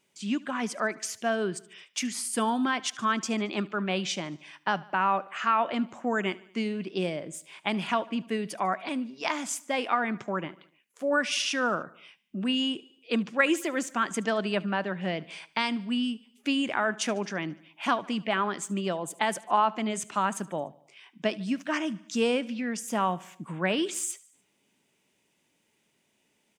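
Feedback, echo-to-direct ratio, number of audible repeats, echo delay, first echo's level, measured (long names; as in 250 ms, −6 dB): 56%, −20.0 dB, 3, 74 ms, −21.5 dB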